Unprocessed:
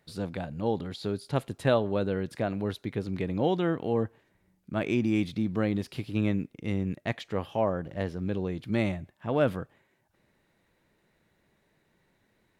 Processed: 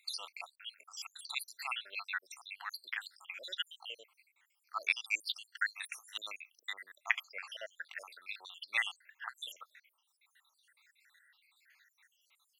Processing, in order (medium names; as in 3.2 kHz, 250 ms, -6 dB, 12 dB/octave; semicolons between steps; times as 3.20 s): random holes in the spectrogram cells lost 77%; high-pass 1.4 kHz 24 dB/octave; trim +12 dB